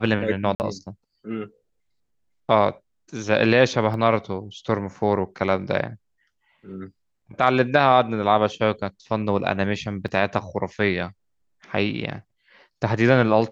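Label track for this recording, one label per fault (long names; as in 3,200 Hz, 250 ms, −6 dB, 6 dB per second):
0.550000	0.600000	drop-out 49 ms
3.940000	3.940000	drop-out 2 ms
10.080000	10.080000	drop-out 3.8 ms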